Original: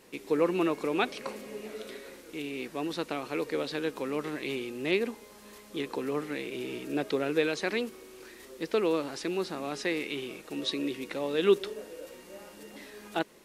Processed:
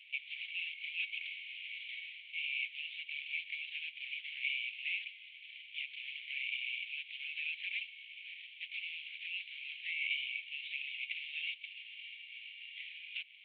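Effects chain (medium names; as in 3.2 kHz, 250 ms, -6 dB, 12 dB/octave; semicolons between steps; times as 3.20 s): CVSD coder 16 kbps; compression 2:1, threshold -34 dBFS, peak gain reduction 9 dB; rippled Chebyshev high-pass 2.2 kHz, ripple 3 dB; trim +11.5 dB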